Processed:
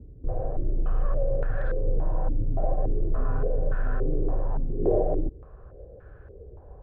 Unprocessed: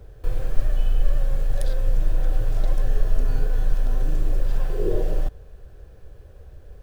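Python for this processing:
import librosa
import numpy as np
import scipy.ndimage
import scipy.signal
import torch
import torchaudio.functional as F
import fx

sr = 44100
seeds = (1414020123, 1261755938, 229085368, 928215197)

y = fx.highpass(x, sr, hz=41.0, slope=6)
y = fx.air_absorb(y, sr, metres=230.0)
y = fx.filter_held_lowpass(y, sr, hz=3.5, low_hz=260.0, high_hz=1500.0)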